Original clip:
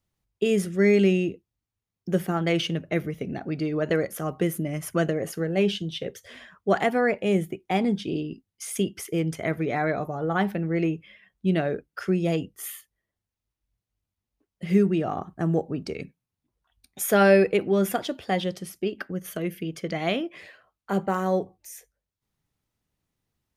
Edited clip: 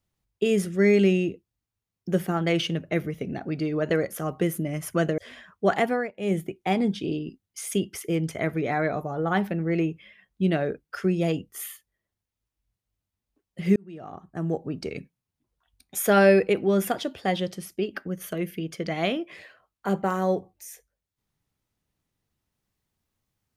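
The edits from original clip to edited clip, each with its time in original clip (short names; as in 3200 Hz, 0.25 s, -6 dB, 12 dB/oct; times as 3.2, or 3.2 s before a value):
5.18–6.22 cut
6.92–7.41 dip -18.5 dB, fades 0.24 s
14.8–15.92 fade in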